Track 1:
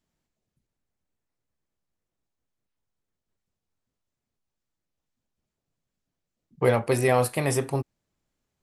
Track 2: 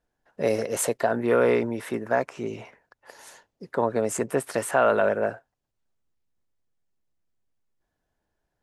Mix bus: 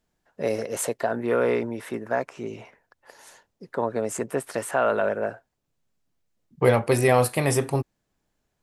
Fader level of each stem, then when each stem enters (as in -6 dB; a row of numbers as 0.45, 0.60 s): +2.5, -2.0 dB; 0.00, 0.00 s